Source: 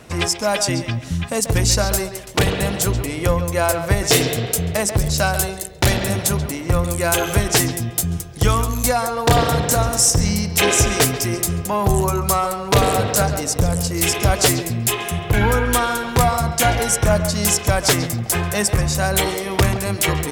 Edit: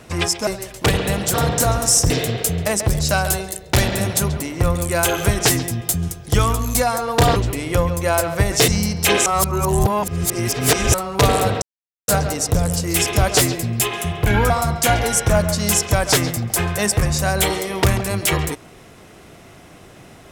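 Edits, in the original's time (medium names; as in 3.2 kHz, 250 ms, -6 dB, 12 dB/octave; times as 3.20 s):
0.47–2.00 s: delete
2.87–4.19 s: swap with 9.45–10.21 s
10.79–12.47 s: reverse
13.15 s: insert silence 0.46 s
15.57–16.26 s: delete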